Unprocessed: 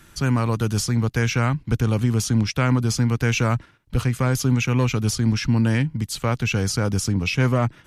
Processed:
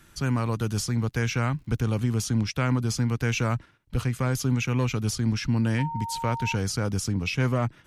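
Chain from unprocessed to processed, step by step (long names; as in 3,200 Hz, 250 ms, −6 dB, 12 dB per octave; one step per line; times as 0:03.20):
0:00.58–0:02.17: surface crackle 110 per second −47 dBFS
0:05.78–0:06.54: steady tone 920 Hz −26 dBFS
level −5 dB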